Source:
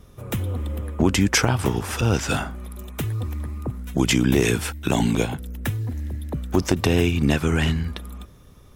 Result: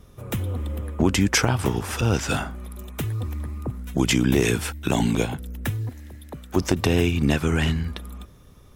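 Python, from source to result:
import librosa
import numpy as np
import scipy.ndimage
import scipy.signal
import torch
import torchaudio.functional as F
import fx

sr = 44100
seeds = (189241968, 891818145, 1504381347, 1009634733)

y = fx.low_shelf(x, sr, hz=370.0, db=-11.5, at=(5.89, 6.56))
y = y * 10.0 ** (-1.0 / 20.0)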